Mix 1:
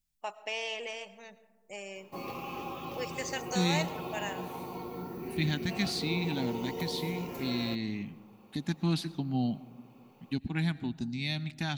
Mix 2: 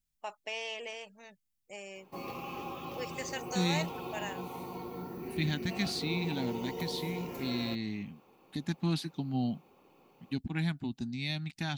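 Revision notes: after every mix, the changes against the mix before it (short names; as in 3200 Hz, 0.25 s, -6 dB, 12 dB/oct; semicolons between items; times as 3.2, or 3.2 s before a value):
reverb: off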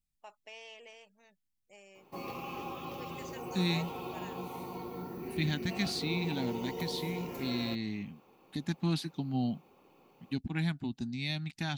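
first voice -11.0 dB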